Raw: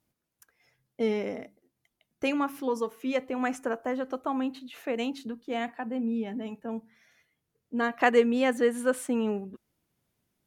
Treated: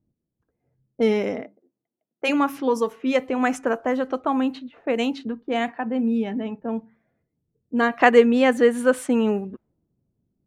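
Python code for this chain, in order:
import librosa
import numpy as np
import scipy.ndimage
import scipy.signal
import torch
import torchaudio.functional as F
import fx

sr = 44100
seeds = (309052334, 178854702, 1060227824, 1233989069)

y = fx.env_lowpass(x, sr, base_hz=330.0, full_db=-26.0)
y = fx.highpass(y, sr, hz=fx.line((1.41, 190.0), (2.28, 560.0)), slope=12, at=(1.41, 2.28), fade=0.02)
y = fx.high_shelf(y, sr, hz=6800.0, db=-7.0, at=(7.84, 9.1))
y = F.gain(torch.from_numpy(y), 7.5).numpy()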